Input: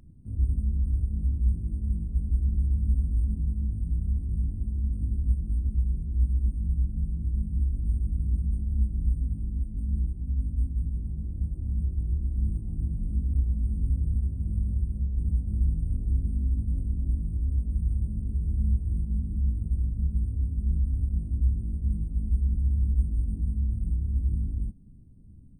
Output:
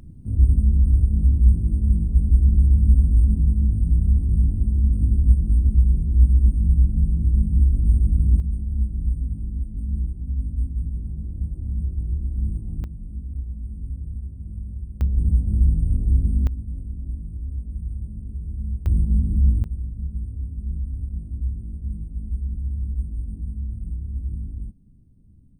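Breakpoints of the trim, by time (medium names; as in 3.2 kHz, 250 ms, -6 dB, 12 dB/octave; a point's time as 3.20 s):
+9.5 dB
from 8.40 s +2.5 dB
from 12.84 s -5 dB
from 15.01 s +7.5 dB
from 16.47 s -3 dB
from 18.86 s +9 dB
from 19.64 s -2 dB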